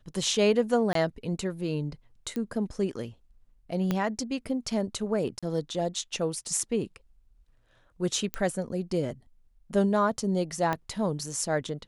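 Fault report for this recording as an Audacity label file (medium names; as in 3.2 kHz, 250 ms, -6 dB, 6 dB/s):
0.930000	0.950000	dropout 23 ms
2.360000	2.360000	pop -21 dBFS
3.910000	3.910000	pop -14 dBFS
5.390000	5.430000	dropout 36 ms
8.340000	8.340000	pop -16 dBFS
10.730000	10.730000	pop -15 dBFS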